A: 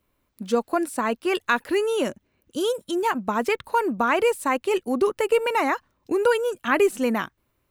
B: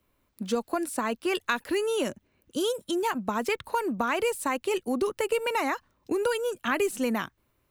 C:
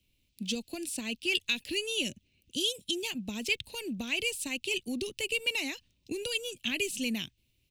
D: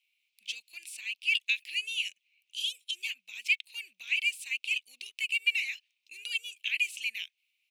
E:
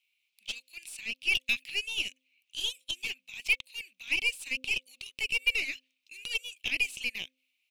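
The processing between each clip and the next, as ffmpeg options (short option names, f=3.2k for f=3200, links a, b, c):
-filter_complex "[0:a]acrossover=split=150|3000[a][b][c];[b]acompressor=threshold=-27dB:ratio=2.5[d];[a][d][c]amix=inputs=3:normalize=0"
-af "firequalizer=gain_entry='entry(110,0);entry(450,-12);entry(1200,-28);entry(2600,7);entry(11000,-2);entry(15000,-4)':delay=0.05:min_phase=1"
-af "highpass=f=2.3k:t=q:w=4.9,volume=-7.5dB"
-af "aeval=exprs='0.2*(cos(1*acos(clip(val(0)/0.2,-1,1)))-cos(1*PI/2))+0.0112*(cos(8*acos(clip(val(0)/0.2,-1,1)))-cos(8*PI/2))':c=same,bandreject=f=260.1:t=h:w=4,bandreject=f=520.2:t=h:w=4"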